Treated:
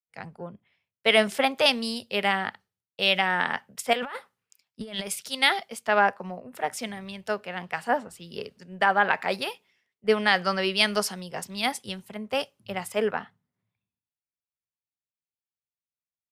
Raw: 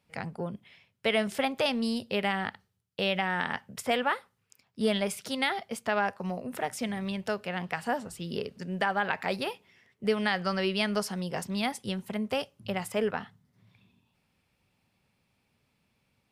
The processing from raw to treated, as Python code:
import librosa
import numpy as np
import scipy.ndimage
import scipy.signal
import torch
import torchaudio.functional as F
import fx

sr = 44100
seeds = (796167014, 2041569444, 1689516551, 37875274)

y = fx.low_shelf(x, sr, hz=240.0, db=-9.5)
y = fx.over_compress(y, sr, threshold_db=-36.0, ratio=-1.0, at=(3.93, 5.07))
y = fx.band_widen(y, sr, depth_pct=100)
y = y * 10.0 ** (5.0 / 20.0)